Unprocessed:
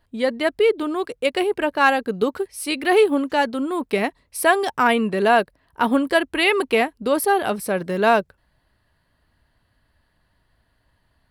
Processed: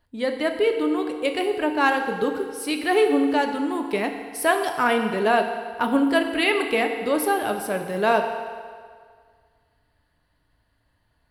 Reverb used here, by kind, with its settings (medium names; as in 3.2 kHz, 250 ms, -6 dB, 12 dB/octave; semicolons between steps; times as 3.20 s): FDN reverb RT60 1.9 s, low-frequency decay 0.75×, high-frequency decay 0.85×, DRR 4.5 dB; trim -4 dB